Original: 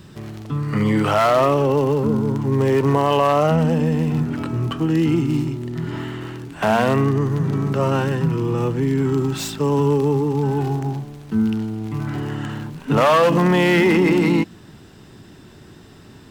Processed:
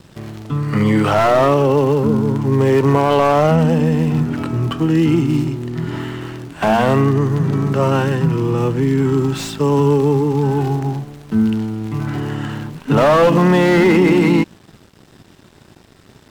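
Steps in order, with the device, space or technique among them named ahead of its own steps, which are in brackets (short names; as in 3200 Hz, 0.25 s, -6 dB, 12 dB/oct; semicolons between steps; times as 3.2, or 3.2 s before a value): early transistor amplifier (crossover distortion -45.5 dBFS; slew limiter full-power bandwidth 170 Hz); gain +4 dB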